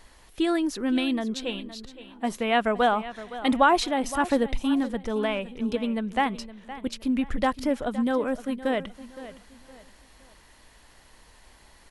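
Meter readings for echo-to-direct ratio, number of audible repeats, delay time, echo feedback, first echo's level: -14.5 dB, 3, 0.516 s, 33%, -15.0 dB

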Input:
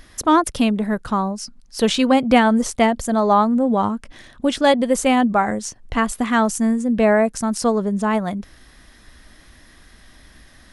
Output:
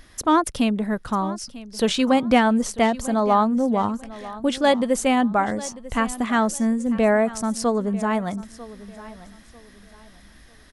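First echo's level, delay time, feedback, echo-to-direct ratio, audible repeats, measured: -17.5 dB, 0.945 s, 29%, -17.0 dB, 2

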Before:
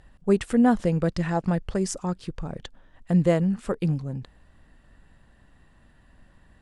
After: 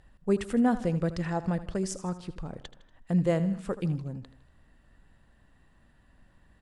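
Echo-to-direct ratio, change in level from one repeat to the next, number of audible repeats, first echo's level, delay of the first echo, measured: -13.0 dB, -5.5 dB, 3, -14.5 dB, 79 ms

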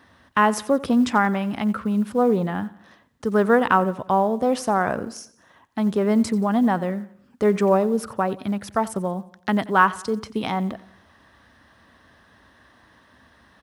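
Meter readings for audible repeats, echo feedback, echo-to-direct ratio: 3, 45%, -18.0 dB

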